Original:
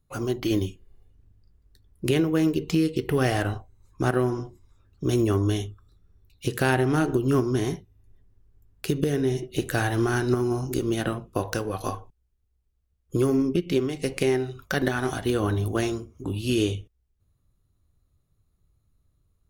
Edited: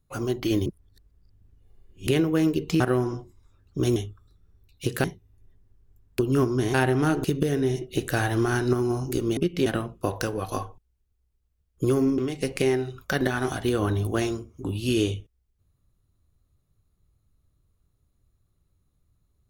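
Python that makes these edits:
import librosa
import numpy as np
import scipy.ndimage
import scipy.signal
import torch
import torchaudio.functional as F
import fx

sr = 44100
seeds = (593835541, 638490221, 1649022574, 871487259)

y = fx.edit(x, sr, fx.reverse_span(start_s=0.66, length_s=1.41),
    fx.cut(start_s=2.8, length_s=1.26),
    fx.cut(start_s=5.22, length_s=0.35),
    fx.swap(start_s=6.65, length_s=0.5, other_s=7.7, other_length_s=1.15),
    fx.move(start_s=13.5, length_s=0.29, to_s=10.98), tone=tone)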